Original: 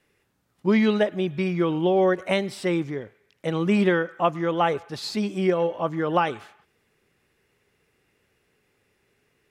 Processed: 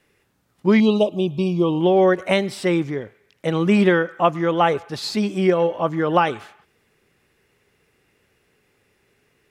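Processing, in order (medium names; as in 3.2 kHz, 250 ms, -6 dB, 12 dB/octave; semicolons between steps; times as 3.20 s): 0.80–1.81 s: Chebyshev band-stop 1.1–2.7 kHz, order 3; trim +4.5 dB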